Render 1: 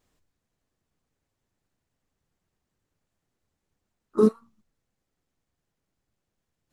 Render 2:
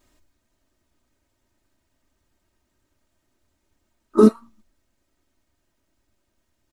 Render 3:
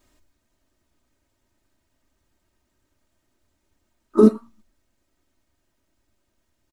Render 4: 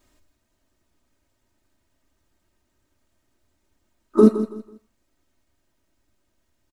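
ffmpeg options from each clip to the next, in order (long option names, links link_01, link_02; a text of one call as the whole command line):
ffmpeg -i in.wav -af "aecho=1:1:3.2:0.63,volume=7.5dB" out.wav
ffmpeg -i in.wav -filter_complex "[0:a]acrossover=split=840[link_01][link_02];[link_01]aecho=1:1:90:0.0708[link_03];[link_02]alimiter=limit=-24dB:level=0:latency=1:release=232[link_04];[link_03][link_04]amix=inputs=2:normalize=0" out.wav
ffmpeg -i in.wav -af "aecho=1:1:164|328|492:0.237|0.064|0.0173" out.wav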